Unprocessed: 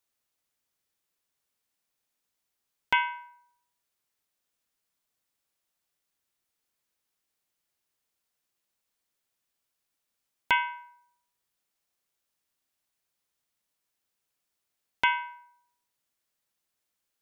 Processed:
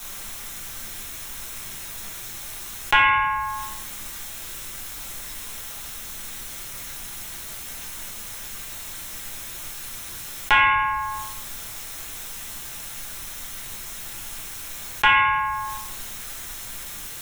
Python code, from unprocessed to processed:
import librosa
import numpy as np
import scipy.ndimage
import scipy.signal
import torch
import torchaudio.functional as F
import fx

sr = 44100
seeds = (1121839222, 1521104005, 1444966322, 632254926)

y = scipy.signal.sosfilt(scipy.signal.butter(4, 110.0, 'highpass', fs=sr, output='sos'), x)
y = fx.peak_eq(y, sr, hz=350.0, db=-13.0, octaves=1.0)
y = y * np.sin(2.0 * np.pi * 110.0 * np.arange(len(y)) / sr)
y = fx.bass_treble(y, sr, bass_db=12, treble_db=1)
y = fx.notch(y, sr, hz=4700.0, q=6.8)
y = fx.room_shoebox(y, sr, seeds[0], volume_m3=33.0, walls='mixed', distance_m=0.82)
y = fx.env_flatten(y, sr, amount_pct=70)
y = y * librosa.db_to_amplitude(5.0)